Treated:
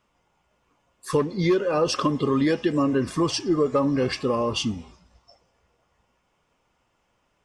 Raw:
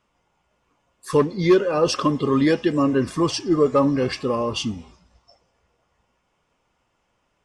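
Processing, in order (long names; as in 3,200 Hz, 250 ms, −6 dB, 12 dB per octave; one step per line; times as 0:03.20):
downward compressor 4 to 1, threshold −18 dBFS, peak gain reduction 6.5 dB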